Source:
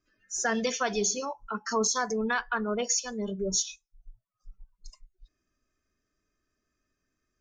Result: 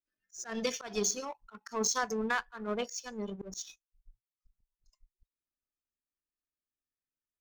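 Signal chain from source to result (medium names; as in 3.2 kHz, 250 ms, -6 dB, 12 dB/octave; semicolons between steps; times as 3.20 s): power-law waveshaper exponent 1.4; slow attack 174 ms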